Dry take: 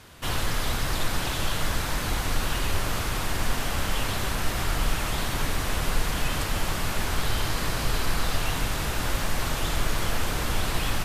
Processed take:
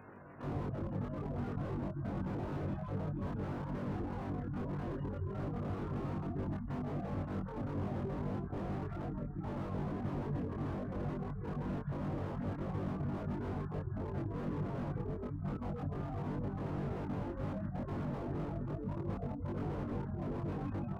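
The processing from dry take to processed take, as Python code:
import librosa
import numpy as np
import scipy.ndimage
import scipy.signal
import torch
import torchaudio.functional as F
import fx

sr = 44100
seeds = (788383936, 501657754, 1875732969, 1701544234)

p1 = fx.spacing_loss(x, sr, db_at_10k=45)
p2 = fx.spec_gate(p1, sr, threshold_db=-25, keep='strong')
p3 = fx.stretch_grains(p2, sr, factor=1.9, grain_ms=87.0)
p4 = fx.rider(p3, sr, range_db=10, speed_s=0.5)
p5 = scipy.signal.sosfilt(scipy.signal.butter(2, 150.0, 'highpass', fs=sr, output='sos'), p4)
p6 = fx.peak_eq(p5, sr, hz=4000.0, db=-12.0, octaves=0.61)
p7 = p6 + fx.echo_wet_highpass(p6, sr, ms=161, feedback_pct=58, hz=2000.0, wet_db=-7, dry=0)
p8 = fx.slew_limit(p7, sr, full_power_hz=3.9)
y = p8 * 10.0 ** (2.5 / 20.0)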